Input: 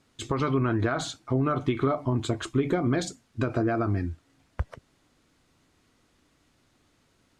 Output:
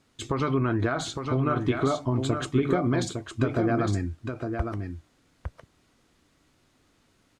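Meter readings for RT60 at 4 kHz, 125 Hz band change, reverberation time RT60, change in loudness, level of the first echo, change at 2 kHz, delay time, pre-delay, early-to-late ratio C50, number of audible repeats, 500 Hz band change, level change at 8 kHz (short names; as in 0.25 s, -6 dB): none, +1.0 dB, none, +1.0 dB, -6.0 dB, +1.0 dB, 0.859 s, none, none, 1, +1.0 dB, +1.0 dB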